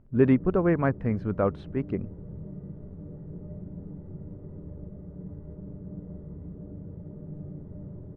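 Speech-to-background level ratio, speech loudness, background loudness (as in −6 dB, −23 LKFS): 16.0 dB, −26.0 LKFS, −42.0 LKFS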